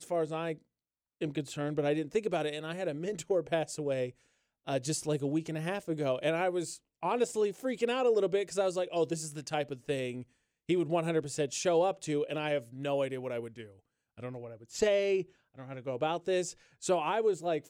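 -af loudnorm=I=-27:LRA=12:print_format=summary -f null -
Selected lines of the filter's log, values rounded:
Input Integrated:    -32.5 LUFS
Input True Peak:     -16.4 dBTP
Input LRA:             2.9 LU
Input Threshold:     -43.0 LUFS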